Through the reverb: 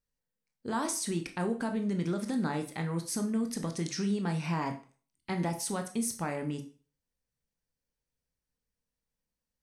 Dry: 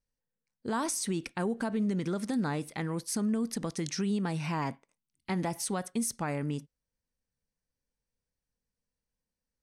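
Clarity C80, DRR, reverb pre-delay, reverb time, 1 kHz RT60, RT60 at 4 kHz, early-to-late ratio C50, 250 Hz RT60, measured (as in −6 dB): 17.0 dB, 5.0 dB, 7 ms, 0.40 s, 0.40 s, 0.35 s, 12.0 dB, 0.35 s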